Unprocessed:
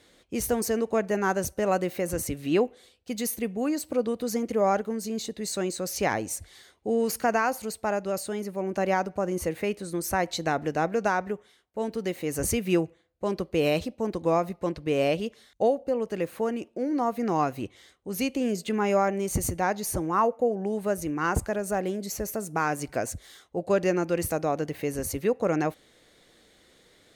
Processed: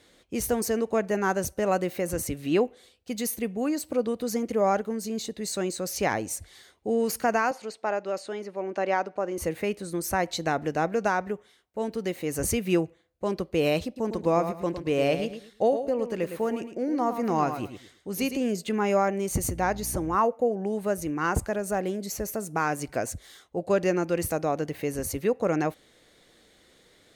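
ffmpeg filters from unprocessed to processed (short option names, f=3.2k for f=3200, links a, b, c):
-filter_complex "[0:a]asettb=1/sr,asplit=3[a][b][c];[a]atrim=end=7.514[d];[b]atrim=start=7.51:end=9.38,asetpts=PTS-STARTPTS,afade=t=in:d=0.004:c=qsin,afade=t=out:st=1.866:d=0.004:c=qsin,highpass=310,lowpass=4.8k[e];[c]atrim=start=9.376[f];[d][e]acrossfade=d=0.004:c1=hsin:c2=qsin[g];[g][f]acrossfade=d=0.004:c1=qsin:c2=hsin,asettb=1/sr,asplit=3[h][i][j];[h]atrim=end=13.854[k];[i]atrim=start=13.85:end=18.37,asetpts=PTS-STARTPTS,afade=t=in:d=0.004:c=qsin,afade=t=out:st=4.516:d=0.004:c=qsin,aecho=1:1:109|218|327:0.355|0.0852|0.0204,atrim=end_sample=199332[l];[j]atrim=start=18.366[m];[k][l]acrossfade=d=0.004:c1=hsin:c2=qsin[n];[n][m]acrossfade=d=0.004:c1=qsin:c2=hsin,asettb=1/sr,asplit=3[o][p][q];[o]atrim=end=19.484[r];[p]atrim=start=19.48:end=20.16,asetpts=PTS-STARTPTS,afade=t=in:d=0.004:c=qsin,afade=t=out:st=0.676:d=0.004:c=qsin,aeval=exprs='val(0)+0.0112*(sin(2*PI*60*n/s)+sin(2*PI*2*60*n/s)/2+sin(2*PI*3*60*n/s)/3+sin(2*PI*4*60*n/s)/4+sin(2*PI*5*60*n/s)/5)':c=same[s];[q]atrim=start=20.156[t];[r][s]acrossfade=d=0.004:c1=hsin:c2=qsin[u];[u][t]acrossfade=d=0.004:c1=qsin:c2=hsin"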